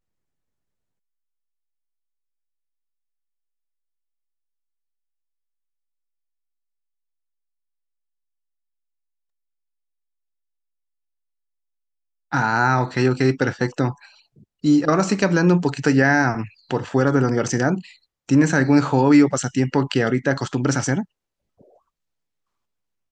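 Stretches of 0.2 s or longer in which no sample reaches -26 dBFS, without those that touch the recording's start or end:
13.91–14.64 s
16.45–16.71 s
17.79–18.29 s

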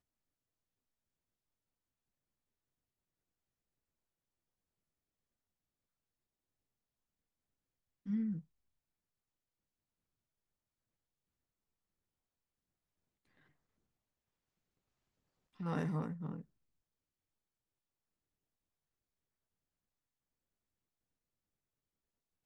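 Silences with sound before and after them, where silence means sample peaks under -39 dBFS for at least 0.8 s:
8.39–15.60 s

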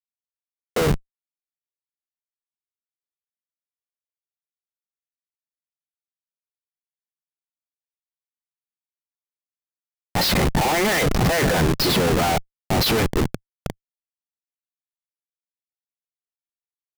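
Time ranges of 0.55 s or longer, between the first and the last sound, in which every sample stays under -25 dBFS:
0.96–10.15 s

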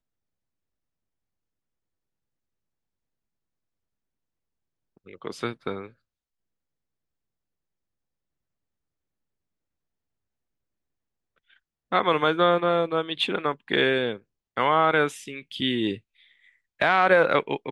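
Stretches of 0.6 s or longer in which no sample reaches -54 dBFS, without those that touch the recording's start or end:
5.93–11.38 s

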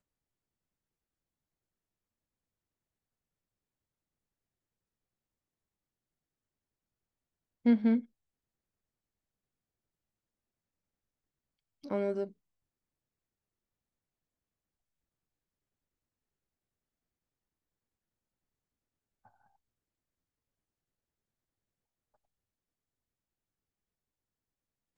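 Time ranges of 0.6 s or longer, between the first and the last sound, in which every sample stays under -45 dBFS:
8.01–11.84 s

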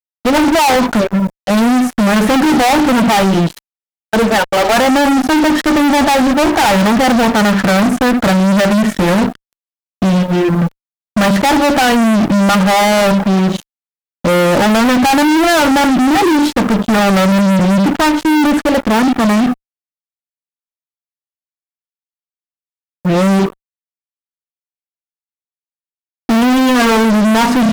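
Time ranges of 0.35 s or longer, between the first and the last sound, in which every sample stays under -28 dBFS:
3.59–4.13 s
9.35–10.02 s
10.68–11.16 s
13.62–14.25 s
19.54–23.05 s
23.52–26.29 s

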